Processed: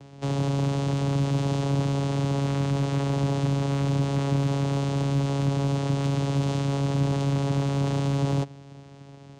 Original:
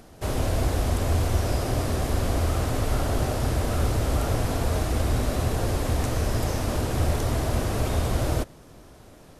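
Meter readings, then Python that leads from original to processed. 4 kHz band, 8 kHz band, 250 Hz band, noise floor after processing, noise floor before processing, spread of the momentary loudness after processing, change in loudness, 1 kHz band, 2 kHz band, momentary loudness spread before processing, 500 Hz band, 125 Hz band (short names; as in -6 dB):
-1.5 dB, -6.5 dB, +4.0 dB, -46 dBFS, -49 dBFS, 1 LU, +0.5 dB, -2.0 dB, -4.0 dB, 2 LU, -1.0 dB, +2.5 dB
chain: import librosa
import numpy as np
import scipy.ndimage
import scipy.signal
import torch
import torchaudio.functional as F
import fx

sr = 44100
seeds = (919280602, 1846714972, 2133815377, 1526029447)

p1 = fx.high_shelf(x, sr, hz=2500.0, db=10.0)
p2 = fx.vocoder(p1, sr, bands=4, carrier='saw', carrier_hz=139.0)
p3 = np.clip(p2, -10.0 ** (-30.0 / 20.0), 10.0 ** (-30.0 / 20.0))
y = p2 + (p3 * librosa.db_to_amplitude(-3.0))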